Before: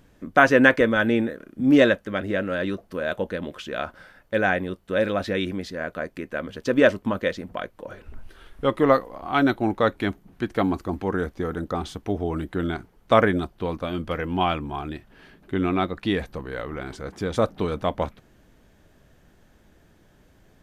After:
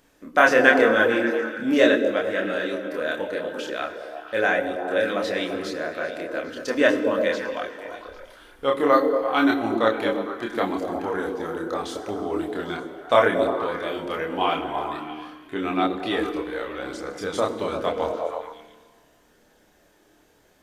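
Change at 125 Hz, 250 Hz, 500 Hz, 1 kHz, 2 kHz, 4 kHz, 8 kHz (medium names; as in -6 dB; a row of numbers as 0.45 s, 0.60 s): -10.5 dB, -2.0 dB, +1.5 dB, +1.5 dB, +1.5 dB, +2.5 dB, no reading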